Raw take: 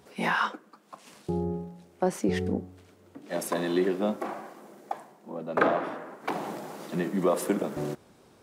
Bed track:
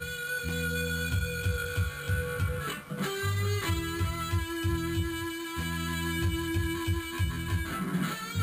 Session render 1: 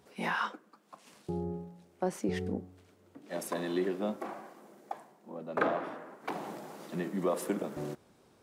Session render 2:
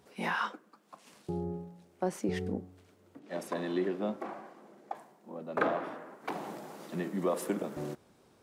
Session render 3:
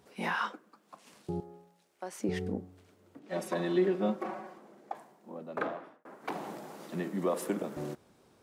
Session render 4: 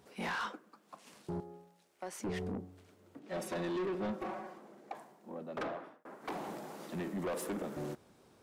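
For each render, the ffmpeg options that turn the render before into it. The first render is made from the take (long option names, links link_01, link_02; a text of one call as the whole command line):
ffmpeg -i in.wav -af "volume=-6dB" out.wav
ffmpeg -i in.wav -filter_complex "[0:a]asettb=1/sr,asplit=3[link_01][link_02][link_03];[link_01]atrim=end=3.194[link_04];[link_02]atrim=start=3.19:end=4.95,asetpts=PTS-STARTPTS,afade=type=in:duration=0.004:curve=qsin,afade=type=out:start_time=1.756:duration=0.004:curve=qsin,highshelf=frequency=7100:gain=-12[link_05];[link_03]atrim=start=4.946[link_06];[link_04][link_05]acrossfade=duration=0.004:curve1=hsin:curve2=qsin[link_07];[link_07][link_06]acrossfade=duration=0.004:curve1=qsin:curve2=hsin" out.wav
ffmpeg -i in.wav -filter_complex "[0:a]asettb=1/sr,asplit=3[link_01][link_02][link_03];[link_01]atrim=end=1.404[link_04];[link_02]atrim=start=1.4:end=2.2,asetpts=PTS-STARTPTS,afade=type=in:duration=0.004:curve=qsin,afade=type=out:start_time=0.796:duration=0.004:curve=qsin,highpass=frequency=1400:poles=1[link_05];[link_03]atrim=start=2.196[link_06];[link_04][link_05]acrossfade=duration=0.004:curve1=hsin:curve2=qsin[link_07];[link_07][link_06]acrossfade=duration=0.004:curve1=qsin:curve2=hsin,asettb=1/sr,asplit=3[link_08][link_09][link_10];[link_08]atrim=end=3.294[link_11];[link_09]atrim=start=3.29:end=4.58,asetpts=PTS-STARTPTS,afade=type=in:duration=0.004:curve=qsin,afade=type=out:start_time=1.286:duration=0.004:curve=qsin,aecho=1:1:5.4:0.89,atrim=end_sample=56889[link_12];[link_10]atrim=start=4.576[link_13];[link_11][link_12]acrossfade=duration=0.004:curve1=hsin:curve2=qsin[link_14];[link_14][link_13]acrossfade=duration=0.004:curve1=qsin:curve2=hsin,asplit=2[link_15][link_16];[link_15]atrim=end=6.05,asetpts=PTS-STARTPTS,afade=type=out:start_time=5.31:duration=0.74[link_17];[link_16]atrim=start=6.05,asetpts=PTS-STARTPTS,afade=type=in:duration=0.004:curve=hsin[link_18];[link_17][link_18]concat=n=2:v=0:a=1" out.wav
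ffmpeg -i in.wav -af "asoftclip=type=tanh:threshold=-33dB" out.wav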